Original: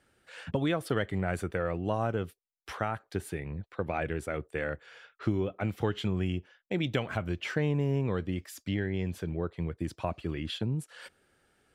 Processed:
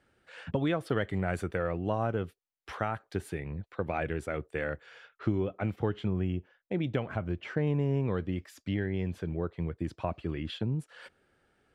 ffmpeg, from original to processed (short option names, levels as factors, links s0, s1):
-af "asetnsamples=n=441:p=0,asendcmd='1.02 lowpass f 7900;1.67 lowpass f 3200;2.73 lowpass f 6100;5.08 lowpass f 2800;5.76 lowpass f 1200;7.67 lowpass f 2800',lowpass=f=3300:p=1"